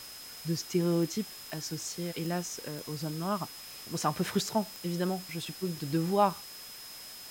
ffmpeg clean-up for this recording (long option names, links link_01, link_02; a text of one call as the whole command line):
ffmpeg -i in.wav -af "adeclick=threshold=4,bandreject=frequency=5100:width=30,afftdn=noise_reduction=30:noise_floor=-46" out.wav